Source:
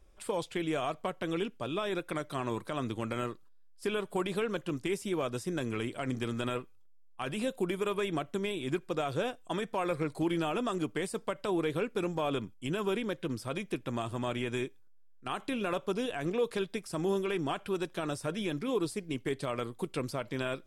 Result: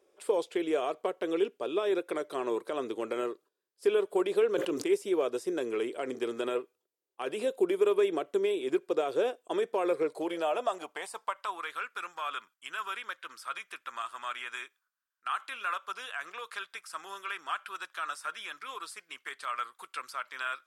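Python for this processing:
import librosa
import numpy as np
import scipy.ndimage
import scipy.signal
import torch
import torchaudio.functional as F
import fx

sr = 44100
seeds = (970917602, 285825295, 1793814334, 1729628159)

y = fx.filter_sweep_highpass(x, sr, from_hz=410.0, to_hz=1300.0, start_s=9.96, end_s=11.73, q=3.3)
y = fx.sustainer(y, sr, db_per_s=61.0, at=(4.52, 4.93))
y = F.gain(torch.from_numpy(y), -2.0).numpy()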